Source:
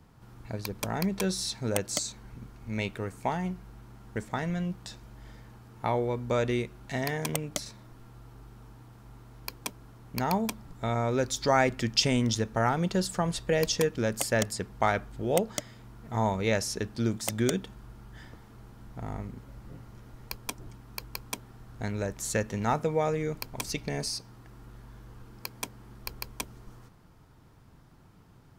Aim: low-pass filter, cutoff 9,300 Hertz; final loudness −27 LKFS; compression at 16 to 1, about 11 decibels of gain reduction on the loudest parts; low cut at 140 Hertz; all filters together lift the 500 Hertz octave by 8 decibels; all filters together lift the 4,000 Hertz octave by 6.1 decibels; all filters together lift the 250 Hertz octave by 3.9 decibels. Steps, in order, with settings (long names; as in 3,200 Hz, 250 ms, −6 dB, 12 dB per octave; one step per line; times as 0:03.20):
high-pass filter 140 Hz
low-pass filter 9,300 Hz
parametric band 250 Hz +3.5 dB
parametric band 500 Hz +8.5 dB
parametric band 4,000 Hz +8 dB
downward compressor 16 to 1, threshold −24 dBFS
level +4.5 dB